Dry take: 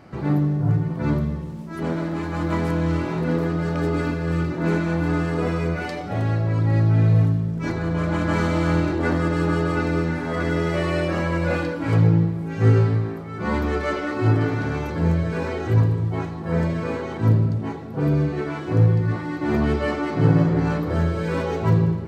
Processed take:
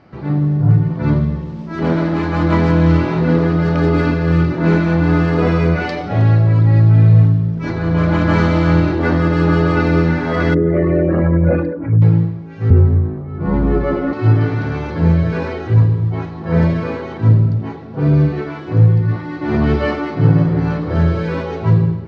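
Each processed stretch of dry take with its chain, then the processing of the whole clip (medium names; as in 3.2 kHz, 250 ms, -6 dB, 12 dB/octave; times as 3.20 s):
10.54–12.02 s: resonances exaggerated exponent 2 + peaking EQ 1.9 kHz +6.5 dB 0.48 oct + band-stop 1.9 kHz, Q 29
12.70–14.13 s: tilt shelf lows +10 dB, about 1.4 kHz + frequency shift -21 Hz
whole clip: low-pass 5.4 kHz 24 dB/octave; dynamic bell 120 Hz, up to +6 dB, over -29 dBFS, Q 1.4; level rider; trim -1 dB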